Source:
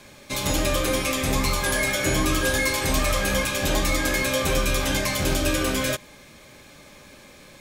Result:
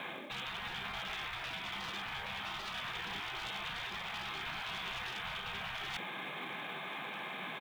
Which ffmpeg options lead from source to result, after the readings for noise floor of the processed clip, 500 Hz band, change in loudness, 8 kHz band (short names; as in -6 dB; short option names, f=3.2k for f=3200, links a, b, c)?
-43 dBFS, -24.0 dB, -16.5 dB, -29.5 dB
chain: -filter_complex "[0:a]highpass=f=240:w=0.5412,highpass=f=240:w=1.3066,acrossover=split=820[a][b];[a]acontrast=77[c];[c][b]amix=inputs=2:normalize=0,aresample=8000,aresample=44100,asoftclip=type=tanh:threshold=-14dB,areverse,acompressor=threshold=-36dB:ratio=20,areverse,asoftclip=type=hard:threshold=-35dB,afftfilt=real='re*lt(hypot(re,im),0.0158)':imag='im*lt(hypot(re,im),0.0158)':win_size=1024:overlap=0.75,acrusher=bits=6:mode=log:mix=0:aa=0.000001,bandreject=f=440:w=12,volume=8.5dB"